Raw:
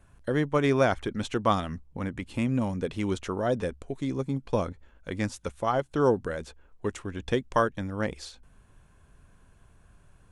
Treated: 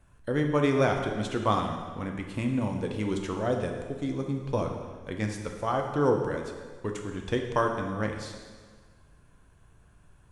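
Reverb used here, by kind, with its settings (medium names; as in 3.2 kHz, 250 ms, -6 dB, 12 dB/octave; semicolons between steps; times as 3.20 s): plate-style reverb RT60 1.6 s, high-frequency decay 0.9×, DRR 2.5 dB; trim -2.5 dB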